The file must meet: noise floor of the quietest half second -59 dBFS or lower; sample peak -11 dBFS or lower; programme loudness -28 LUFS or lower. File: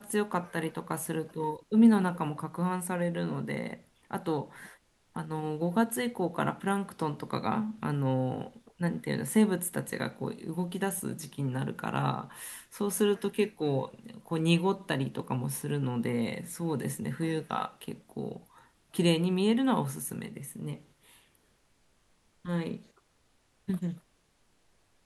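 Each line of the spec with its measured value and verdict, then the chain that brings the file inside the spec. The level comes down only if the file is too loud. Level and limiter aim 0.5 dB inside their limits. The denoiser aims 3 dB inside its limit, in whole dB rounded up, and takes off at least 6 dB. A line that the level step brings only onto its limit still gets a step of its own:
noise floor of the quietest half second -69 dBFS: pass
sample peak -11.5 dBFS: pass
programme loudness -31.5 LUFS: pass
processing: none needed

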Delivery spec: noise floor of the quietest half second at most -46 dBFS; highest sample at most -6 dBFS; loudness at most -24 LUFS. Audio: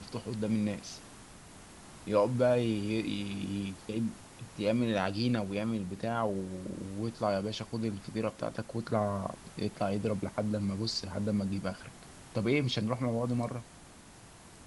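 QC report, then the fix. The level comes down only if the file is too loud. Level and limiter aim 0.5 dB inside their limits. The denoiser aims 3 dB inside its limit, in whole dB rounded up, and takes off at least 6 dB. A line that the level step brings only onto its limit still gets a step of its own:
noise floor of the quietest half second -53 dBFS: pass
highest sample -14.0 dBFS: pass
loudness -33.0 LUFS: pass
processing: none needed

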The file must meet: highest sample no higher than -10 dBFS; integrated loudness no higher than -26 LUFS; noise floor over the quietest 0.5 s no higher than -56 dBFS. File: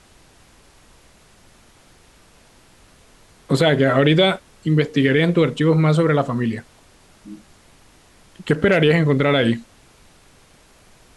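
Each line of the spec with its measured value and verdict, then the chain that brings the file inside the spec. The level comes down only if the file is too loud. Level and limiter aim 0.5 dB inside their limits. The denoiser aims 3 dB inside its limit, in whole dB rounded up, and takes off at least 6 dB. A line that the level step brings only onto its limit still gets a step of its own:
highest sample -4.5 dBFS: fail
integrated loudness -17.5 LUFS: fail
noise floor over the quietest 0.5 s -51 dBFS: fail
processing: trim -9 dB

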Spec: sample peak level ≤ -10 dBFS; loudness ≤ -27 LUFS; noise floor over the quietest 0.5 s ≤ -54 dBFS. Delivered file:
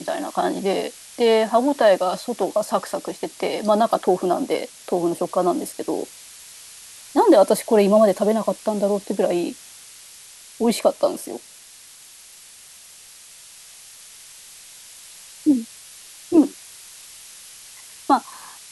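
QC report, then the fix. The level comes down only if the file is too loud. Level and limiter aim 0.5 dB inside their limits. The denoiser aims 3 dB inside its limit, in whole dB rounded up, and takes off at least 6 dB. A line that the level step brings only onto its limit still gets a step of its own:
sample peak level -5.0 dBFS: fail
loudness -20.5 LUFS: fail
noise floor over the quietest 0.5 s -45 dBFS: fail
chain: noise reduction 6 dB, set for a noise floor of -45 dBFS; trim -7 dB

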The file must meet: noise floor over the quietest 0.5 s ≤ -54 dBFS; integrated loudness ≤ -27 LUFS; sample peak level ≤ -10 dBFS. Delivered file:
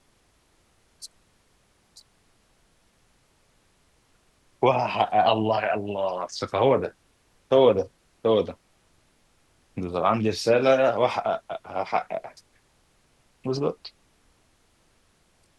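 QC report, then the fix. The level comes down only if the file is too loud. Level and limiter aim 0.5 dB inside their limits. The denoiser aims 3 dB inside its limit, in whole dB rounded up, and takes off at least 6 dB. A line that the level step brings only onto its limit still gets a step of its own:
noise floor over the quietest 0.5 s -64 dBFS: pass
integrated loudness -24.0 LUFS: fail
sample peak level -6.5 dBFS: fail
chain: trim -3.5 dB; peak limiter -10.5 dBFS

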